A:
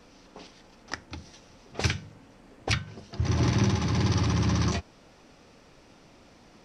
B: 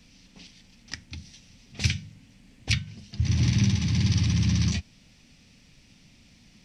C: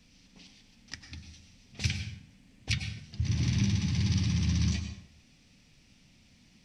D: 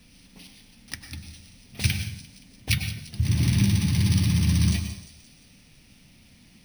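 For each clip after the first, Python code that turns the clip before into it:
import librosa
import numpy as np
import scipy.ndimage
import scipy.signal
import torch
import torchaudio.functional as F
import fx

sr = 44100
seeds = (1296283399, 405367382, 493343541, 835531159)

y1 = fx.band_shelf(x, sr, hz=700.0, db=-16.0, octaves=2.6)
y1 = y1 * librosa.db_to_amplitude(2.5)
y2 = fx.rev_plate(y1, sr, seeds[0], rt60_s=0.71, hf_ratio=0.7, predelay_ms=85, drr_db=7.0)
y2 = y2 * librosa.db_to_amplitude(-5.5)
y3 = fx.echo_wet_highpass(y2, sr, ms=174, feedback_pct=56, hz=4500.0, wet_db=-11)
y3 = np.repeat(scipy.signal.resample_poly(y3, 1, 3), 3)[:len(y3)]
y3 = y3 * librosa.db_to_amplitude(6.5)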